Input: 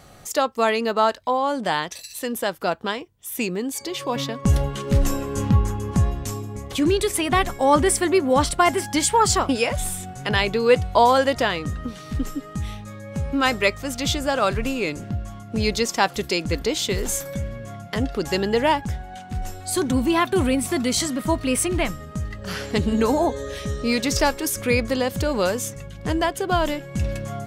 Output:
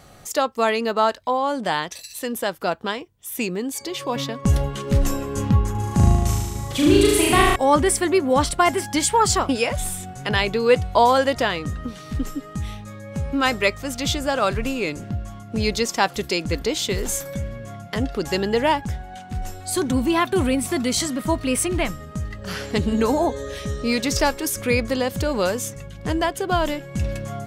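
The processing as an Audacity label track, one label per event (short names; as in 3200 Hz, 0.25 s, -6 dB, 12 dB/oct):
5.710000	7.560000	flutter echo walls apart 6.4 m, dies away in 1.4 s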